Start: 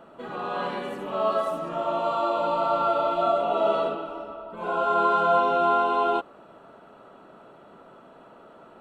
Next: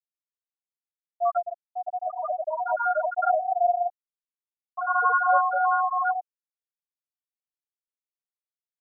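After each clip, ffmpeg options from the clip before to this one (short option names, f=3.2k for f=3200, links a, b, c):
-filter_complex "[0:a]asplit=2[a][b];[b]adelay=897,lowpass=f=2k:p=1,volume=-12.5dB,asplit=2[c][d];[d]adelay=897,lowpass=f=2k:p=1,volume=0.52,asplit=2[e][f];[f]adelay=897,lowpass=f=2k:p=1,volume=0.52,asplit=2[g][h];[h]adelay=897,lowpass=f=2k:p=1,volume=0.52,asplit=2[i][j];[j]adelay=897,lowpass=f=2k:p=1,volume=0.52[k];[a][c][e][g][i][k]amix=inputs=6:normalize=0,afreqshift=48,afftfilt=real='re*gte(hypot(re,im),0.447)':imag='im*gte(hypot(re,im),0.447)':win_size=1024:overlap=0.75,volume=2.5dB"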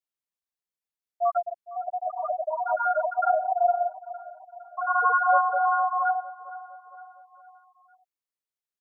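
-af "aecho=1:1:459|918|1377|1836:0.141|0.0706|0.0353|0.0177"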